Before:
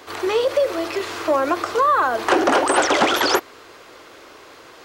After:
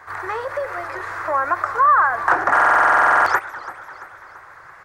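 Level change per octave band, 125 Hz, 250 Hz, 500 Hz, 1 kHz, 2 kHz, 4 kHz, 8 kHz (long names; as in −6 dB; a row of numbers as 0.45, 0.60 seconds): can't be measured, −13.5 dB, −7.5 dB, +4.0 dB, +6.0 dB, below −15 dB, below −10 dB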